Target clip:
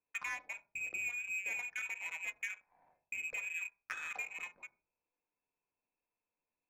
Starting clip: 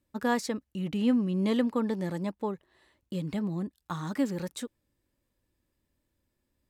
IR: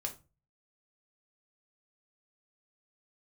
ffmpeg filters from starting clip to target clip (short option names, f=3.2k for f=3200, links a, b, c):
-filter_complex "[0:a]aemphasis=mode=production:type=75kf,acompressor=threshold=-38dB:ratio=6,lowpass=f=2.3k:t=q:w=0.5098,lowpass=f=2.3k:t=q:w=0.6013,lowpass=f=2.3k:t=q:w=0.9,lowpass=f=2.3k:t=q:w=2.563,afreqshift=-2700,asplit=2[a][b];[1:a]atrim=start_sample=2205,asetrate=26460,aresample=44100[c];[b][c]afir=irnorm=-1:irlink=0,volume=1dB[d];[a][d]amix=inputs=2:normalize=0,adynamicsmooth=sensitivity=4.5:basefreq=770,volume=-7dB"